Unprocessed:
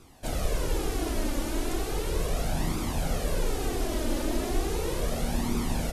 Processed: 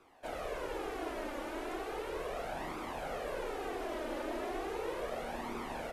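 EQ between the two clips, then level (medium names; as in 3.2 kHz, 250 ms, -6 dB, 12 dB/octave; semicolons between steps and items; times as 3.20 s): three-band isolator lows -20 dB, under 360 Hz, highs -16 dB, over 2.7 kHz; -2.5 dB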